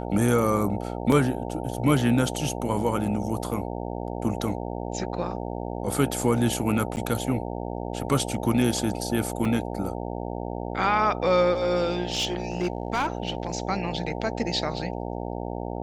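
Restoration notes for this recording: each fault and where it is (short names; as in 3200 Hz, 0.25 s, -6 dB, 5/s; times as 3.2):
buzz 60 Hz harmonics 15 -32 dBFS
1.12 gap 2.9 ms
6.96–6.97 gap 9.6 ms
9.45 gap 2.9 ms
12.1–13.55 clipped -20.5 dBFS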